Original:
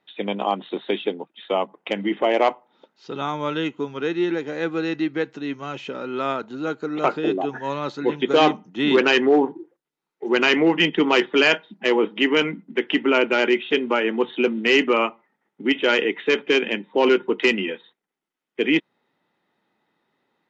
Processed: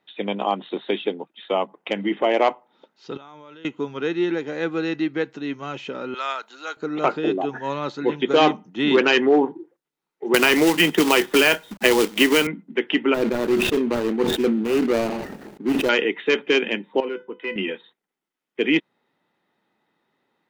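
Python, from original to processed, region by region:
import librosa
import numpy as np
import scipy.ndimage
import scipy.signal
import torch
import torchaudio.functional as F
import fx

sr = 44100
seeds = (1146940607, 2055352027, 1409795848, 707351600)

y = fx.chain(x, sr, fx.low_shelf(hz=140.0, db=-8.5),
    fx.level_steps(step_db=22), at=(3.17, 3.65))
y = fx.chain(y, sr, fx.highpass(hz=910.0, slope=12),
    fx.high_shelf(hz=4200.0, db=9.0), at=(6.14, 6.77))
y = fx.chain(y, sr, fx.peak_eq(hz=91.0, db=-14.5, octaves=0.23),
    fx.quant_companded(bits=4),
    fx.band_squash(depth_pct=100), at=(10.34, 12.47))
y = fx.chain(y, sr, fx.median_filter(points=41),
    fx.sustainer(db_per_s=38.0), at=(13.14, 15.89))
y = fx.chain(y, sr, fx.lowpass(hz=2400.0, slope=12),
    fx.comb_fb(f0_hz=500.0, decay_s=0.28, harmonics='all', damping=0.0, mix_pct=80), at=(17.0, 17.56))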